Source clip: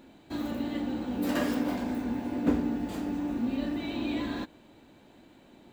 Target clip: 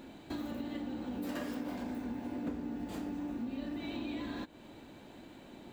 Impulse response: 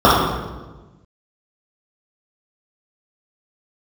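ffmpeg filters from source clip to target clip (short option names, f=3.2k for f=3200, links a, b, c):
-af "acompressor=threshold=-42dB:ratio=4,volume=3.5dB"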